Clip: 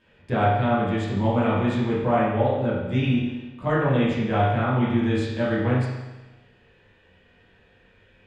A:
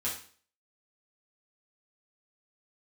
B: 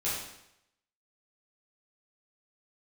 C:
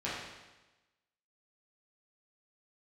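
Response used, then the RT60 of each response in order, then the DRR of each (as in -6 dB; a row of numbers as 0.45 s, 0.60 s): C; 0.45 s, 0.80 s, 1.1 s; -8.0 dB, -10.5 dB, -9.5 dB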